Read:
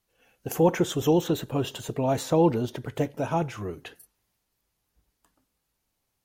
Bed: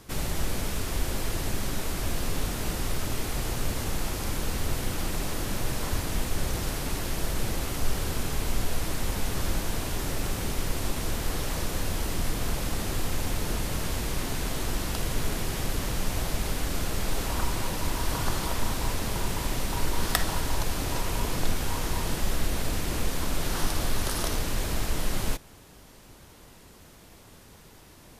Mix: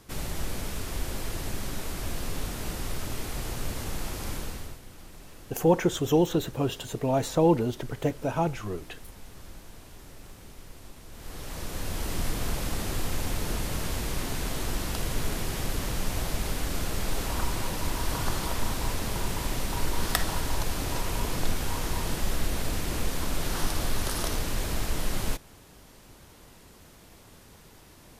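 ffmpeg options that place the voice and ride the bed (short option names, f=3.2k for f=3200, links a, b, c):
-filter_complex "[0:a]adelay=5050,volume=-0.5dB[a];[1:a]volume=13dB,afade=t=out:st=4.33:d=0.46:silence=0.199526,afade=t=in:st=11.1:d=1.09:silence=0.149624[b];[a][b]amix=inputs=2:normalize=0"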